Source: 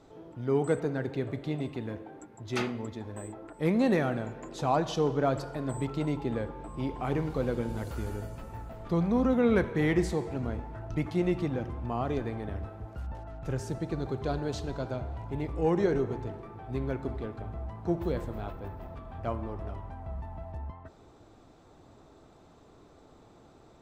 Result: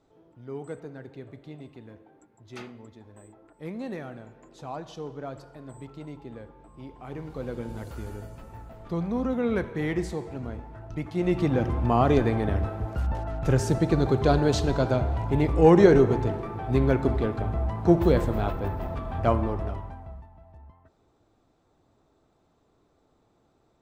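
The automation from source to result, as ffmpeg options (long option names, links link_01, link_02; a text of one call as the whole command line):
ffmpeg -i in.wav -af "volume=10.5dB,afade=type=in:start_time=7.02:duration=0.69:silence=0.398107,afade=type=in:start_time=11.12:duration=0.63:silence=0.237137,afade=type=out:start_time=19.35:duration=0.67:silence=0.266073,afade=type=out:start_time=20.02:duration=0.27:silence=0.334965" out.wav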